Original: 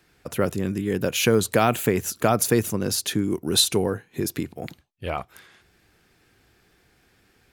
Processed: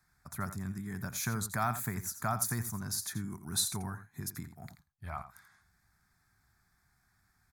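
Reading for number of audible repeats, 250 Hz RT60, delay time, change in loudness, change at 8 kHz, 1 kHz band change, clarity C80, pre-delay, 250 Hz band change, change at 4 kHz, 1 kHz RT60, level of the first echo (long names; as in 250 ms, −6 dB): 1, no reverb audible, 85 ms, −12.5 dB, −8.5 dB, −10.0 dB, no reverb audible, no reverb audible, −15.0 dB, −15.0 dB, no reverb audible, −12.0 dB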